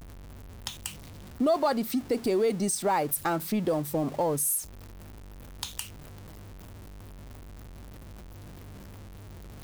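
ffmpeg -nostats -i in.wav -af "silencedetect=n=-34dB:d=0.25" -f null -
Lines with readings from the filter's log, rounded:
silence_start: 0.00
silence_end: 0.67 | silence_duration: 0.67
silence_start: 0.89
silence_end: 1.40 | silence_duration: 0.51
silence_start: 4.62
silence_end: 5.63 | silence_duration: 1.01
silence_start: 5.82
silence_end: 9.64 | silence_duration: 3.81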